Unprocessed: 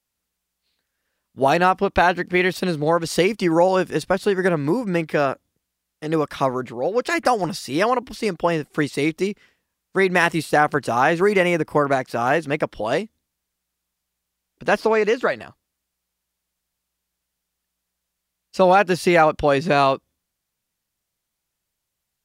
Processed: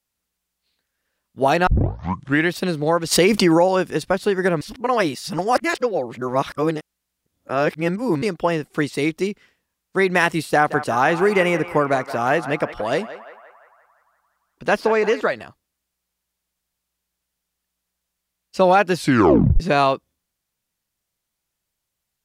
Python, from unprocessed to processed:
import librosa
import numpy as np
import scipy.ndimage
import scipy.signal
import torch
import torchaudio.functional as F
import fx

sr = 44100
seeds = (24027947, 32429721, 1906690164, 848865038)

y = fx.env_flatten(x, sr, amount_pct=70, at=(3.11, 3.57), fade=0.02)
y = fx.echo_banded(y, sr, ms=173, feedback_pct=66, hz=1200.0, wet_db=-11, at=(10.48, 15.21))
y = fx.edit(y, sr, fx.tape_start(start_s=1.67, length_s=0.84),
    fx.reverse_span(start_s=4.61, length_s=3.61),
    fx.tape_stop(start_s=18.96, length_s=0.64), tone=tone)